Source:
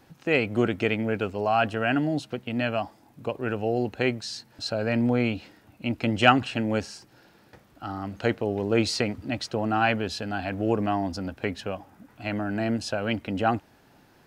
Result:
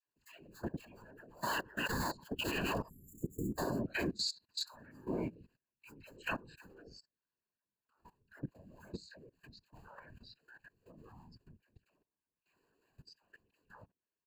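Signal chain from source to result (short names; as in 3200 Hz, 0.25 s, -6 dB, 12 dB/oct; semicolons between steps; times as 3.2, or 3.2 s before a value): cycle switcher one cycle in 2, inverted; Doppler pass-by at 2.93, 12 m/s, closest 2.2 m; dispersion lows, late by 69 ms, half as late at 720 Hz; speakerphone echo 0.1 s, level -17 dB; in parallel at -2 dB: negative-ratio compressor -52 dBFS, ratio -0.5; on the sum: spectral delete 2.88–3.57, 370–6700 Hz; ripple EQ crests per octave 1.4, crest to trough 17 dB; spectral noise reduction 20 dB; HPF 95 Hz 24 dB/oct; bell 580 Hz -6 dB 1.1 oct; level quantiser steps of 21 dB; whisperiser; gain +6.5 dB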